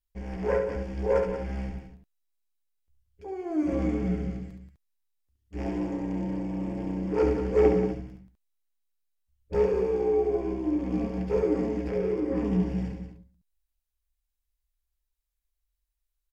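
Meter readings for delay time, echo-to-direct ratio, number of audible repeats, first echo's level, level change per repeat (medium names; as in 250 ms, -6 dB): 70 ms, -4.0 dB, 3, -6.0 dB, no regular repeats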